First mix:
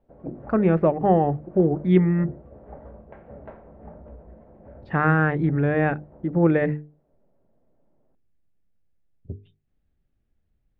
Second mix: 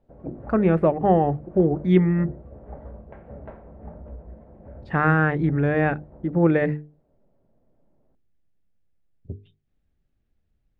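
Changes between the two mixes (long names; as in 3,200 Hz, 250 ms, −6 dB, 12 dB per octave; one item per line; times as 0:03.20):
speech: remove high-frequency loss of the air 120 metres
background: add low-shelf EQ 140 Hz +7 dB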